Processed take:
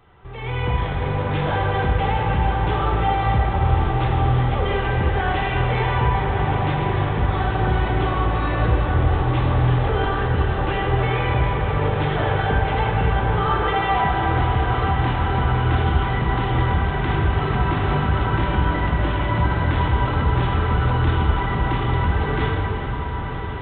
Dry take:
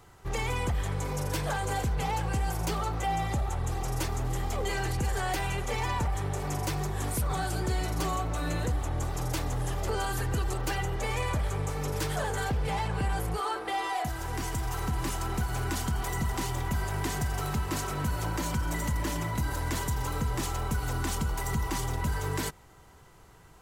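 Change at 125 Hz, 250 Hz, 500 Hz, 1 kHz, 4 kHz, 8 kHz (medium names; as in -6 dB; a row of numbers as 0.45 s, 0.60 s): +12.0 dB, +10.0 dB, +11.0 dB, +11.5 dB, +7.0 dB, under -40 dB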